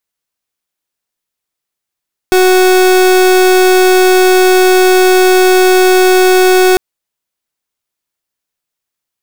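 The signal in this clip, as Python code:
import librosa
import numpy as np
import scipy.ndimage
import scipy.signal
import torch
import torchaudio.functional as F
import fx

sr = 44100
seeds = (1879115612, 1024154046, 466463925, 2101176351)

y = fx.pulse(sr, length_s=4.45, hz=370.0, level_db=-7.0, duty_pct=37)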